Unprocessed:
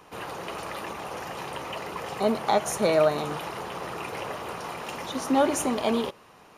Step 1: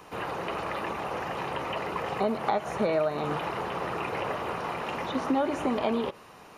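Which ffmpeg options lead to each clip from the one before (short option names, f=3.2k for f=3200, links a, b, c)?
-filter_complex "[0:a]acompressor=threshold=-26dB:ratio=6,bandreject=f=3.3k:w=28,acrossover=split=3400[a][b];[b]acompressor=threshold=-59dB:ratio=4:attack=1:release=60[c];[a][c]amix=inputs=2:normalize=0,volume=3dB"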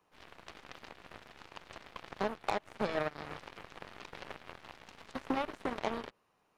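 -af "aeval=exprs='0.251*(cos(1*acos(clip(val(0)/0.251,-1,1)))-cos(1*PI/2))+0.01*(cos(3*acos(clip(val(0)/0.251,-1,1)))-cos(3*PI/2))+0.0355*(cos(7*acos(clip(val(0)/0.251,-1,1)))-cos(7*PI/2))+0.00501*(cos(8*acos(clip(val(0)/0.251,-1,1)))-cos(8*PI/2))':c=same,volume=-5dB"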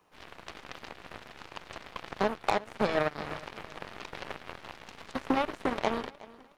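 -af "aecho=1:1:366|732|1098:0.1|0.04|0.016,volume=6dB"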